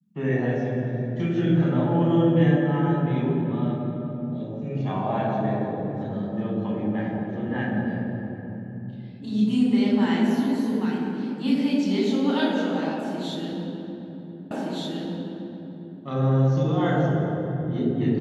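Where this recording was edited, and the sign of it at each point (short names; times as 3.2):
14.51 repeat of the last 1.52 s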